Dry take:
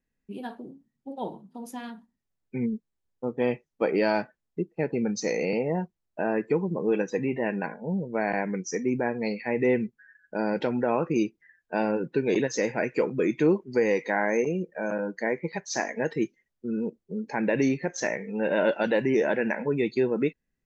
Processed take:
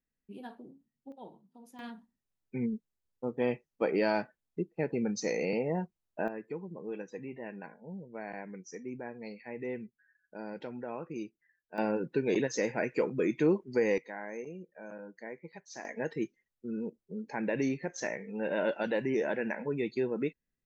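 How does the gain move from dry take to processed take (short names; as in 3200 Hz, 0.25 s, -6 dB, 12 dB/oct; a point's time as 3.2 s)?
-8.5 dB
from 1.12 s -15 dB
from 1.79 s -4.5 dB
from 6.28 s -14.5 dB
from 11.78 s -4.5 dB
from 13.98 s -16 dB
from 15.85 s -7 dB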